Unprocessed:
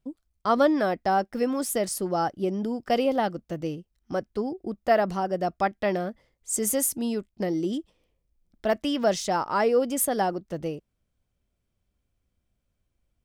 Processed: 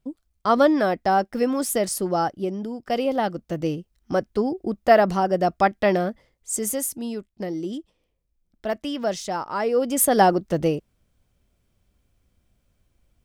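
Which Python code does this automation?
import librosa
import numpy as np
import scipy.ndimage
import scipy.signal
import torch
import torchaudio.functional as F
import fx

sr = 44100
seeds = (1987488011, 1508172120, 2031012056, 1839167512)

y = fx.gain(x, sr, db=fx.line((2.16, 3.5), (2.72, -2.5), (3.7, 6.0), (6.04, 6.0), (6.84, -2.0), (9.61, -2.0), (10.23, 9.5)))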